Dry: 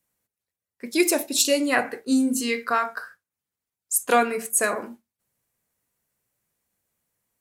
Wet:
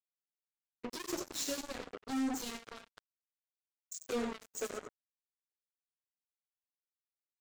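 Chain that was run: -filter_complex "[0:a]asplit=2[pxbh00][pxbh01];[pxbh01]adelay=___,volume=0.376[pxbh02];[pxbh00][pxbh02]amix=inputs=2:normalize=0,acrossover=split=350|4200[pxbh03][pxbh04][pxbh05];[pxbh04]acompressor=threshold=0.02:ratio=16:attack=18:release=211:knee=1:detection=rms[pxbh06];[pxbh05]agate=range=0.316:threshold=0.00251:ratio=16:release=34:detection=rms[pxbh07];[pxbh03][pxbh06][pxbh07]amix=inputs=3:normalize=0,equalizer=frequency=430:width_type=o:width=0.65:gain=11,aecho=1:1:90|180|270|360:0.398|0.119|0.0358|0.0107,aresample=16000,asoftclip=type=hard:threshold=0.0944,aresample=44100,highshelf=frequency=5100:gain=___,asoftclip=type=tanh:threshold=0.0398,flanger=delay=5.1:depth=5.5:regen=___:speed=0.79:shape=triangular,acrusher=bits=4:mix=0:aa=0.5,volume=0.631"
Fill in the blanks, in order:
12, 7, 4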